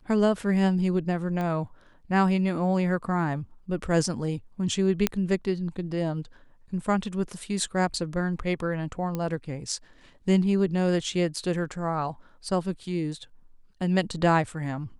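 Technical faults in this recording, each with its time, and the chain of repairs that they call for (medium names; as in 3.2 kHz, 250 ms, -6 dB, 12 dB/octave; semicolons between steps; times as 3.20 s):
1.41 s: pop -20 dBFS
5.07 s: pop -7 dBFS
9.15 s: pop -17 dBFS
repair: de-click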